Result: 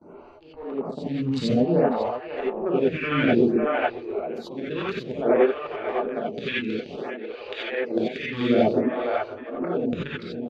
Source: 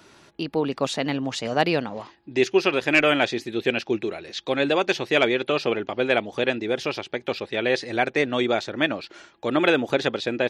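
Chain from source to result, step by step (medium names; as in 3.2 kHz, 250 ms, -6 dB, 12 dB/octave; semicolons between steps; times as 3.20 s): local Wiener filter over 25 samples; low-pass that closes with the level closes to 1.8 kHz, closed at -16.5 dBFS; 6.05–8.24 s: frequency weighting D; gate with hold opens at -49 dBFS; treble shelf 4.3 kHz -8 dB; slow attack 477 ms; delay 549 ms -9 dB; gated-style reverb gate 110 ms rising, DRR -7 dB; lamp-driven phase shifter 0.57 Hz; trim +6.5 dB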